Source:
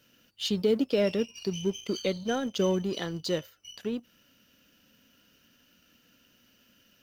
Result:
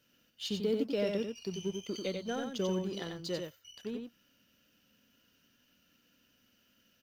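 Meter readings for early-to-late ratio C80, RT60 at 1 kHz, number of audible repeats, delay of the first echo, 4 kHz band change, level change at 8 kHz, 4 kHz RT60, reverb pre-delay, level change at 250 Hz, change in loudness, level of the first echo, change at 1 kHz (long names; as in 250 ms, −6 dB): no reverb audible, no reverb audible, 1, 92 ms, −6.5 dB, −6.5 dB, no reverb audible, no reverb audible, −6.0 dB, −6.5 dB, −5.0 dB, −6.5 dB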